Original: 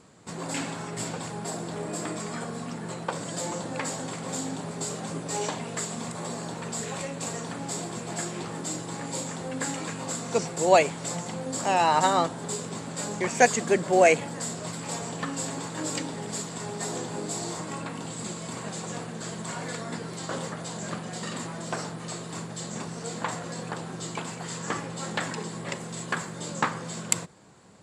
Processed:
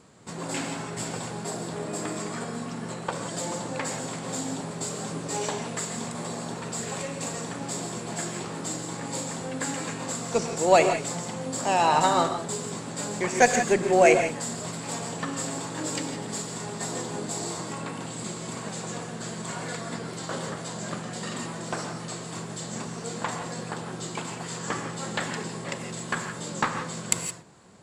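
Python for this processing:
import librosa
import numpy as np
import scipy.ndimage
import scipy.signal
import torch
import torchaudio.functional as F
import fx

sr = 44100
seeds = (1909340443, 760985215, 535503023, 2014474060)

y = fx.cheby_harmonics(x, sr, harmonics=(8,), levels_db=(-34,), full_scale_db=-3.0)
y = fx.rev_gated(y, sr, seeds[0], gate_ms=190, shape='rising', drr_db=6.5)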